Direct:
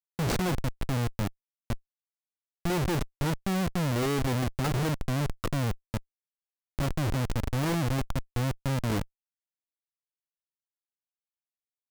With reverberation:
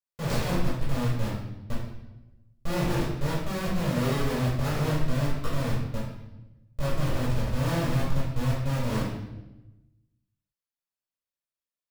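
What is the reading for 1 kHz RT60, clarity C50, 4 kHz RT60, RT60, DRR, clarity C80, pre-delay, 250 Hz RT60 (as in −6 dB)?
0.90 s, 1.0 dB, 0.85 s, 1.0 s, −9.0 dB, 4.5 dB, 3 ms, 1.3 s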